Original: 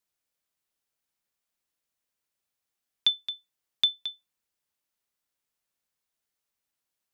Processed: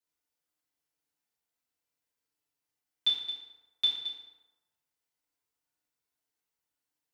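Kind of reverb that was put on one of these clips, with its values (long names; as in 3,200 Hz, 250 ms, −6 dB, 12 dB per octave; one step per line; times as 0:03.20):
feedback delay network reverb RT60 1.1 s, low-frequency decay 0.85×, high-frequency decay 0.6×, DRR −8.5 dB
level −11 dB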